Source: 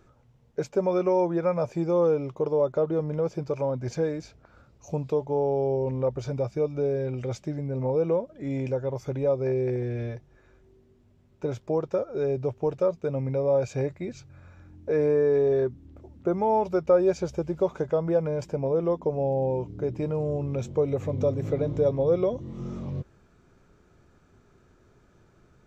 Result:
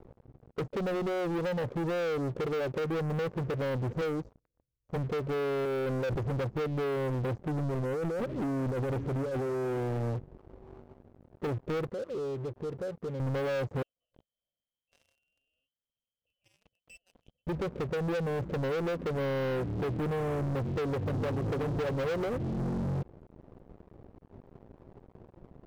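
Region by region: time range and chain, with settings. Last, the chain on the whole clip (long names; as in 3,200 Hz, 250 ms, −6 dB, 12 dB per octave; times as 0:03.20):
0:04.01–0:04.96: parametric band 200 Hz −7.5 dB 1.8 octaves + comb filter 6.4 ms, depth 39% + multiband upward and downward expander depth 70%
0:05.65–0:06.23: spectral tilt +3 dB per octave + slack as between gear wheels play −45.5 dBFS + level that may fall only so fast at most 22 dB per second
0:07.63–0:10.03: compressor whose output falls as the input rises −33 dBFS + single-tap delay 558 ms −19 dB + highs frequency-modulated by the lows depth 0.57 ms
0:11.89–0:13.20: high-pass filter 60 Hz 6 dB per octave + downward compressor 2.5 to 1, threshold −45 dBFS + saturating transformer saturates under 660 Hz
0:13.82–0:17.47: comb filter 1.6 ms, depth 86% + voice inversion scrambler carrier 3,200 Hz + one half of a high-frequency compander encoder only
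whole clip: elliptic low-pass filter 530 Hz, stop band 40 dB; downward compressor 3 to 1, threshold −31 dBFS; leveller curve on the samples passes 5; level −7 dB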